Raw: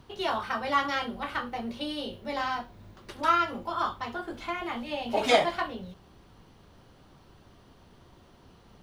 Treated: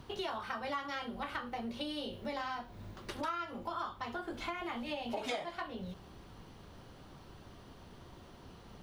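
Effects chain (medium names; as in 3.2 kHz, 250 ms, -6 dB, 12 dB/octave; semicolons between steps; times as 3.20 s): compression 5:1, threshold -39 dBFS, peak gain reduction 20.5 dB; trim +2 dB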